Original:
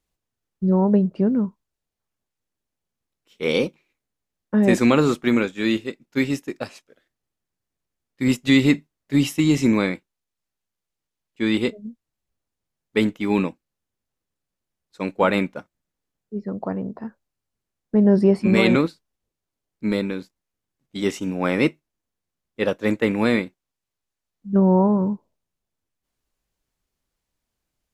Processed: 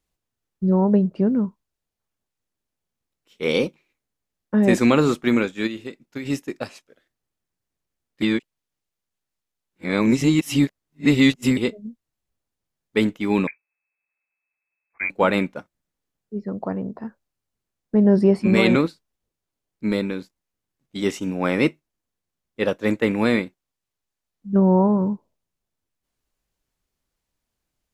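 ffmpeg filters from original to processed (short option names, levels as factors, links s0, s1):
-filter_complex "[0:a]asplit=3[s0][s1][s2];[s0]afade=t=out:st=5.66:d=0.02[s3];[s1]acompressor=threshold=0.0501:ratio=16:attack=3.2:release=140:knee=1:detection=peak,afade=t=in:st=5.66:d=0.02,afade=t=out:st=6.25:d=0.02[s4];[s2]afade=t=in:st=6.25:d=0.02[s5];[s3][s4][s5]amix=inputs=3:normalize=0,asettb=1/sr,asplit=3[s6][s7][s8];[s6]atrim=end=13.474[s9];[s7]atrim=start=13.47:end=15.1,asetpts=PTS-STARTPTS,afade=t=in:d=0.004:c=qsin,afade=t=out:st=1.626:d=0.004:c=qsin,lowpass=f=2200:t=q:w=0.5098,lowpass=f=2200:t=q:w=0.6013,lowpass=f=2200:t=q:w=0.9,lowpass=f=2200:t=q:w=2.563,afreqshift=-2600[s10];[s8]atrim=start=15.096[s11];[s9][s10]acrossfade=d=0.004:c1=hsin:c2=qsin[s12];[s12][s11]acrossfade=d=0.004:c1=qsin:c2=hsin,asplit=3[s13][s14][s15];[s13]atrim=end=8.222[s16];[s14]atrim=start=8.218:end=11.572,asetpts=PTS-STARTPTS,areverse[s17];[s15]atrim=start=11.568[s18];[s16][s17]acrossfade=d=0.004:c1=hsin:c2=hsin[s19];[s19][s18]acrossfade=d=0.004:c1=hsin:c2=hsin"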